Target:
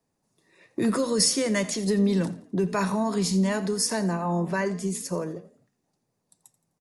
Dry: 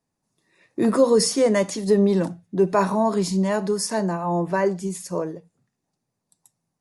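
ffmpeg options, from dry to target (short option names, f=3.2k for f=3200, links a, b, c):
-filter_complex "[0:a]equalizer=f=460:t=o:w=1:g=4,acrossover=split=200|1400|3300[a][b][c][d];[b]acompressor=threshold=-31dB:ratio=6[e];[a][e][c][d]amix=inputs=4:normalize=0,asplit=4[f][g][h][i];[g]adelay=85,afreqshift=39,volume=-17.5dB[j];[h]adelay=170,afreqshift=78,volume=-25.7dB[k];[i]adelay=255,afreqshift=117,volume=-33.9dB[l];[f][j][k][l]amix=inputs=4:normalize=0,volume=1.5dB"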